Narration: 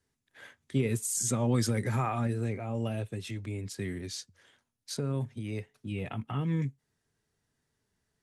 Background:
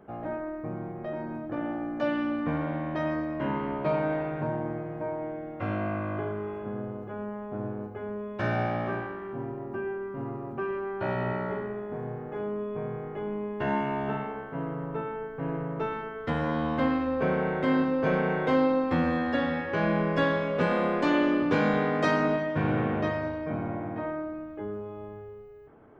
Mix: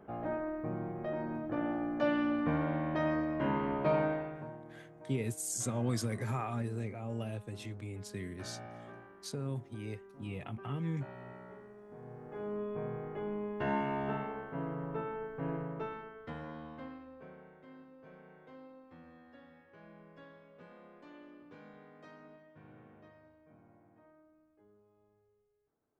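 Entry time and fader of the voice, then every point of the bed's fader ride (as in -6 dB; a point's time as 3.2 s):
4.35 s, -6.0 dB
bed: 4.01 s -2.5 dB
4.64 s -19 dB
11.75 s -19 dB
12.58 s -5 dB
15.51 s -5 dB
17.63 s -30 dB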